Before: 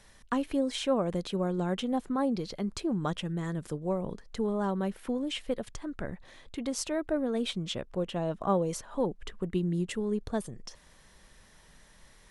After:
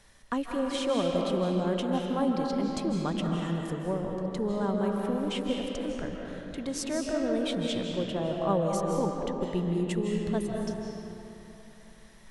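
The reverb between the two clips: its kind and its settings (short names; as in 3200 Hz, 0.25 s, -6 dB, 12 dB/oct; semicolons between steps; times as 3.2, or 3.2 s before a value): digital reverb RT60 3.1 s, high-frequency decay 0.6×, pre-delay 0.12 s, DRR 0 dB; gain -1 dB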